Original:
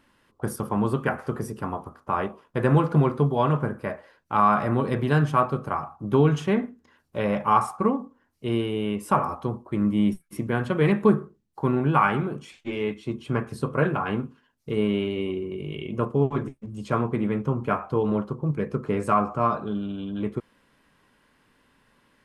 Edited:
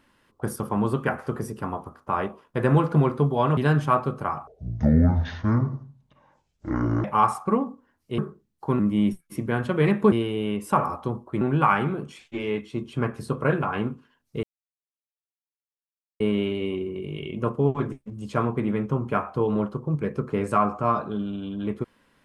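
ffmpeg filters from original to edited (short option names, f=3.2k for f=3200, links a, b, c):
-filter_complex "[0:a]asplit=9[a][b][c][d][e][f][g][h][i];[a]atrim=end=3.572[j];[b]atrim=start=5.028:end=5.934[k];[c]atrim=start=5.93:end=7.37,asetpts=PTS-STARTPTS,asetrate=24696,aresample=44100[l];[d]atrim=start=7.366:end=8.512[m];[e]atrim=start=11.128:end=11.742[n];[f]atrim=start=9.798:end=11.132[o];[g]atrim=start=8.508:end=9.802[p];[h]atrim=start=11.738:end=14.76,asetpts=PTS-STARTPTS,afade=t=out:st=3.018:d=0.004:c=hsin,apad=pad_dur=1.77[q];[i]atrim=start=14.76,asetpts=PTS-STARTPTS,afade=t=in:d=0.004:c=hsin[r];[j][k]acrossfade=d=0.004:c1=hsin:c2=hsin[s];[s][l]acrossfade=d=0.004:c1=hsin:c2=hsin[t];[t][m]acrossfade=d=0.004:c1=hsin:c2=hsin[u];[u][n]acrossfade=d=0.004:c1=hsin:c2=hsin[v];[v][o]acrossfade=d=0.004:c1=hsin:c2=hsin[w];[w][p]acrossfade=d=0.004:c1=hsin:c2=hsin[x];[q][r]concat=n=2:v=0:a=1[y];[x][y]acrossfade=d=0.004:c1=hsin:c2=hsin"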